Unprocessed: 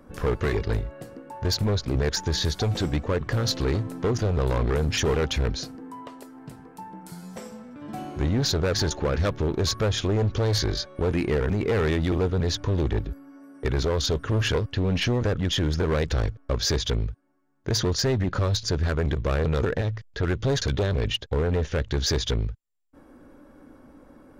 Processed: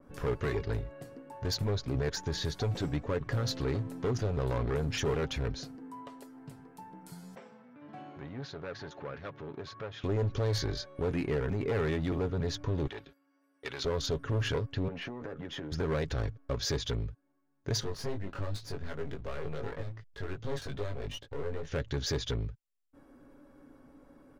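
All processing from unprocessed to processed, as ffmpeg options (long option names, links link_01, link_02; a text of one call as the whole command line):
ffmpeg -i in.wav -filter_complex "[0:a]asettb=1/sr,asplit=3[link_01][link_02][link_03];[link_01]atrim=end=7.354[link_04];[link_02]atrim=start=7.35:end=10.04,asetpts=PTS-STARTPTS,afade=type=in:duration=0.004:curve=qsin,afade=type=out:start_time=2.686:duration=0.004:curve=qsin,equalizer=frequency=290:width=0.63:gain=-5.5,acompressor=threshold=-31dB:ratio=2:attack=3.2:release=140:knee=1:detection=peak,highpass=160,lowpass=2600[link_05];[link_03]atrim=start=10.036[link_06];[link_04][link_05]acrossfade=duration=0.004:curve1=hsin:curve2=qsin[link_07];[link_07][link_06]acrossfade=duration=0.004:curve1=qsin:curve2=hsin,asettb=1/sr,asplit=3[link_08][link_09][link_10];[link_08]atrim=end=12.874[link_11];[link_09]atrim=start=12.87:end=13.85,asetpts=PTS-STARTPTS,afade=type=in:duration=0.004:curve=qsin,afade=type=out:start_time=0.976:duration=0.004:curve=qsin,highpass=frequency=920:poles=1,agate=range=-11dB:threshold=-50dB:ratio=16:release=100:detection=peak,equalizer=frequency=3300:width_type=o:width=1.4:gain=6.5[link_12];[link_10]atrim=start=13.846[link_13];[link_11][link_12]acrossfade=duration=0.004:curve1=hsin:curve2=qsin[link_14];[link_14][link_13]acrossfade=duration=0.004:curve1=qsin:curve2=hsin,asettb=1/sr,asplit=3[link_15][link_16][link_17];[link_15]atrim=end=14.884[link_18];[link_16]atrim=start=14.88:end=15.72,asetpts=PTS-STARTPTS,afade=type=in:duration=0.004:curve=qsin,afade=type=out:start_time=0.836:duration=0.004:curve=qsin,acrossover=split=200 2300:gain=0.2 1 0.178[link_19][link_20][link_21];[link_19][link_20][link_21]amix=inputs=3:normalize=0,asplit=2[link_22][link_23];[link_23]adelay=13,volume=-8.5dB[link_24];[link_22][link_24]amix=inputs=2:normalize=0,atrim=end_sample=37044,acompressor=threshold=-28dB:ratio=10:attack=3.2:release=140:knee=1:detection=peak[link_25];[link_17]atrim=start=15.716[link_26];[link_18][link_25]acrossfade=duration=0.004:curve1=hsin:curve2=qsin[link_27];[link_27][link_26]acrossfade=duration=0.004:curve1=qsin:curve2=hsin,asettb=1/sr,asplit=3[link_28][link_29][link_30];[link_28]atrim=end=17.804[link_31];[link_29]atrim=start=17.8:end=21.67,asetpts=PTS-STARTPTS,afade=type=in:duration=0.004:curve=qsin,afade=type=out:start_time=3.866:duration=0.004:curve=qsin,highshelf=frequency=6500:gain=-9,aeval=exprs='clip(val(0),-1,0.0168)':channel_layout=same,flanger=delay=19:depth=2.1:speed=2.6[link_32];[link_30]atrim=start=21.666[link_33];[link_31][link_32]acrossfade=duration=0.004:curve1=hsin:curve2=qsin[link_34];[link_34][link_33]acrossfade=duration=0.004:curve1=qsin:curve2=hsin,aecho=1:1:7.2:0.35,adynamicequalizer=threshold=0.00891:dfrequency=2700:dqfactor=0.7:tfrequency=2700:tqfactor=0.7:attack=5:release=100:ratio=0.375:range=2:mode=cutabove:tftype=highshelf,volume=-7.5dB" out.wav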